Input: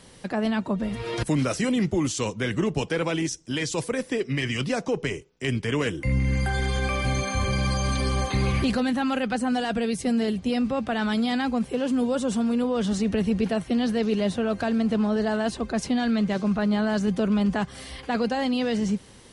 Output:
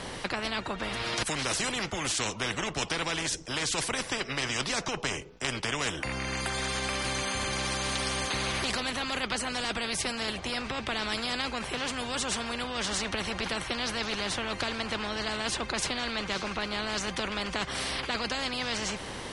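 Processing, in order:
low-pass filter 2,500 Hz 6 dB per octave
every bin compressed towards the loudest bin 4 to 1

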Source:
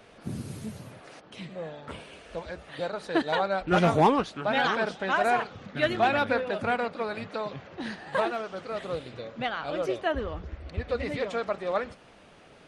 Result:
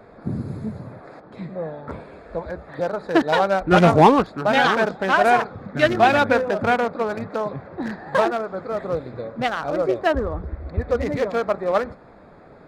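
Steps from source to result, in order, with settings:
adaptive Wiener filter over 15 samples
level +8.5 dB

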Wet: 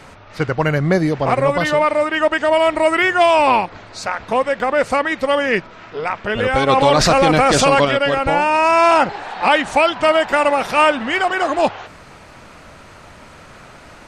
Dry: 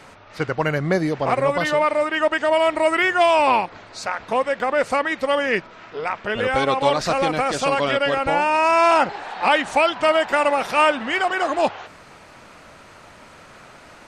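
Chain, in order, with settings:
low-shelf EQ 140 Hz +8 dB
0:06.69–0:07.85: envelope flattener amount 70%
level +3 dB

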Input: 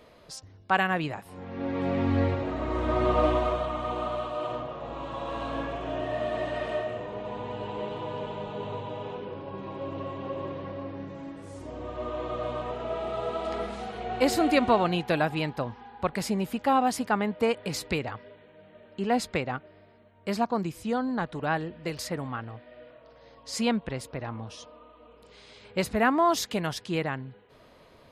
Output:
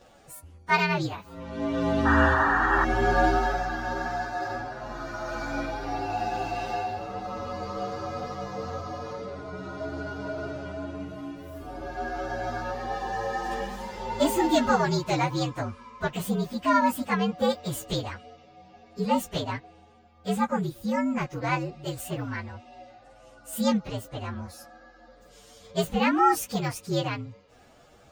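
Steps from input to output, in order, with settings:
partials spread apart or drawn together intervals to 119%
sound drawn into the spectrogram noise, 0:02.05–0:02.85, 740–1,900 Hz −27 dBFS
level +3.5 dB

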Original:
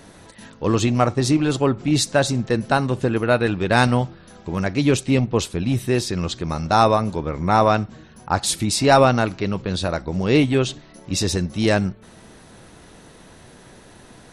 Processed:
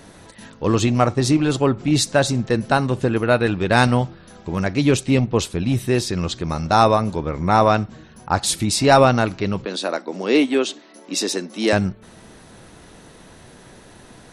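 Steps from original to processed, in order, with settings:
0:09.65–0:11.73: Butterworth high-pass 230 Hz 36 dB per octave
level +1 dB

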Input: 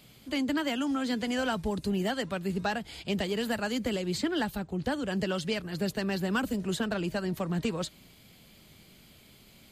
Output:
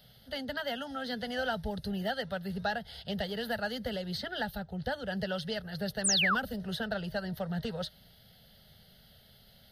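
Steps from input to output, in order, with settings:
phaser with its sweep stopped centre 1,600 Hz, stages 8
sound drawn into the spectrogram fall, 0:06.04–0:06.35, 1,000–10,000 Hz −27 dBFS

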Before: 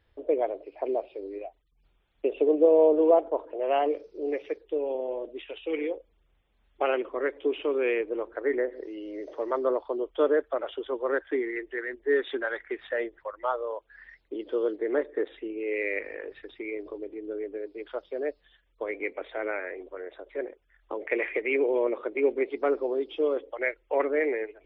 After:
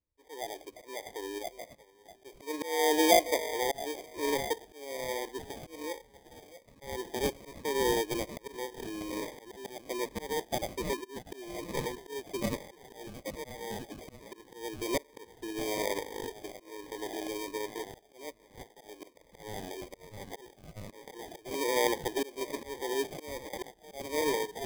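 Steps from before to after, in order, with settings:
noise gate with hold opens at −45 dBFS
on a send: echo through a band-pass that steps 641 ms, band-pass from 1,100 Hz, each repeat 0.7 octaves, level −3 dB
on the sum: volume swells 431 ms
gain on a spectral selection 0:10.93–0:11.16, 430–1,600 Hz −28 dB
decimation without filtering 32×
phaser whose notches keep moving one way falling 1.2 Hz

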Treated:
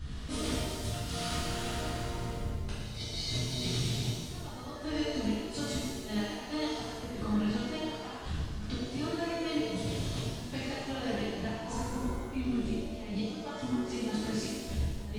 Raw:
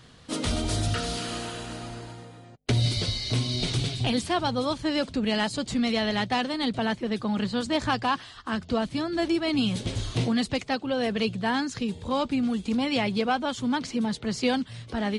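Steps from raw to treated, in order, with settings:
wind on the microphone 83 Hz −32 dBFS
healed spectral selection 0:11.55–0:12.05, 220–1,200 Hz both
gate with flip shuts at −16 dBFS, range −27 dB
downward compressor 4 to 1, threshold −39 dBFS, peak gain reduction 16 dB
reverb with rising layers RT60 1.5 s, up +7 semitones, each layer −8 dB, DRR −11.5 dB
level −5.5 dB

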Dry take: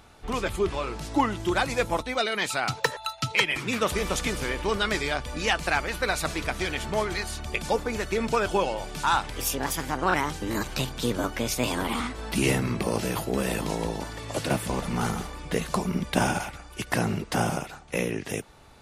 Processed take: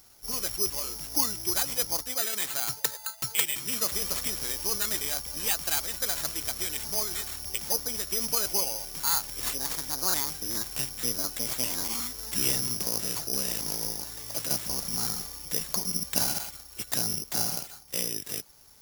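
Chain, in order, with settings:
bad sample-rate conversion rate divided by 8×, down none, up zero stuff
level −12 dB

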